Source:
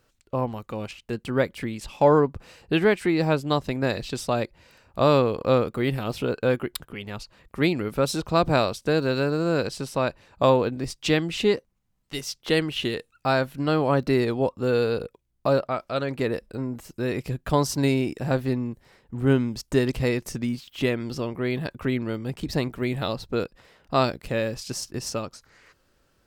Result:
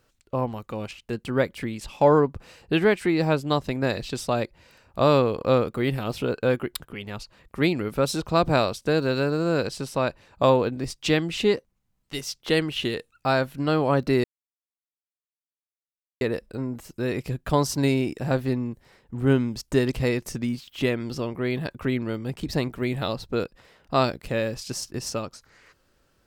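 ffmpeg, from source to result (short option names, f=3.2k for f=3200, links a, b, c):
-filter_complex "[0:a]asplit=3[a][b][c];[a]atrim=end=14.24,asetpts=PTS-STARTPTS,afade=t=out:st=14.236:d=0.004:c=hsin[d];[b]atrim=start=14.24:end=16.21,asetpts=PTS-STARTPTS,volume=0[e];[c]atrim=start=16.21,asetpts=PTS-STARTPTS,afade=t=in:d=0.004:c=hsin[f];[d][e][f]concat=n=3:v=0:a=1"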